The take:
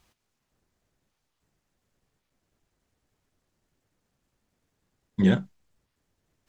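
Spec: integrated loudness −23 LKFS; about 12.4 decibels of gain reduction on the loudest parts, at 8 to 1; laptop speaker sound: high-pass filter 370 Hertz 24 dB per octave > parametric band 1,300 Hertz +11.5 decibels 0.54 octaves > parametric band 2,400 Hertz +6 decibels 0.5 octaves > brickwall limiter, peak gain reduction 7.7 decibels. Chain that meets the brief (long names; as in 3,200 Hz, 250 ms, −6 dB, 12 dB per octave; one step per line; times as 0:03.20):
downward compressor 8 to 1, threshold −28 dBFS
high-pass filter 370 Hz 24 dB per octave
parametric band 1,300 Hz +11.5 dB 0.54 octaves
parametric band 2,400 Hz +6 dB 0.5 octaves
level +24 dB
brickwall limiter −9 dBFS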